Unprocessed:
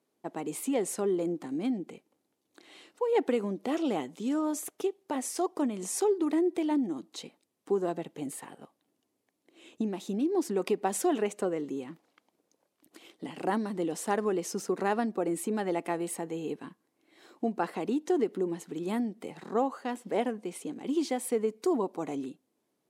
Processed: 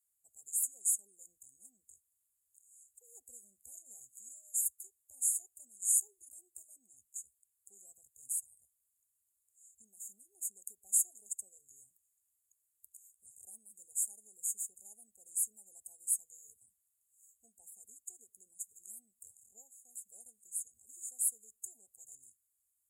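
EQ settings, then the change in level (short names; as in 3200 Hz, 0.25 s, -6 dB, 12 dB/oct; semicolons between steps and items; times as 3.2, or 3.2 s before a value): inverse Chebyshev band-stop 150–2300 Hz, stop band 50 dB; brick-wall FIR band-stop 880–6600 Hz; +7.5 dB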